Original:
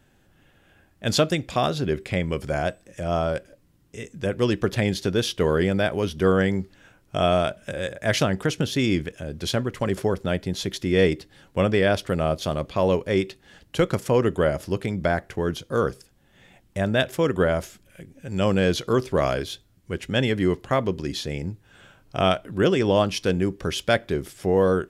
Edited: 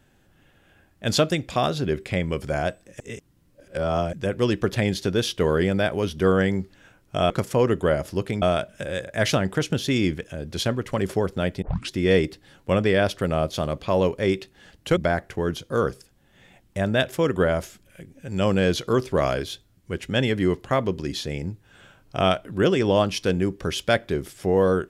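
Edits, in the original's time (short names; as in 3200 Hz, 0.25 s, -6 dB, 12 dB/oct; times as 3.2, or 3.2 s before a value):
3–4.13 reverse
10.5 tape start 0.29 s
13.85–14.97 move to 7.3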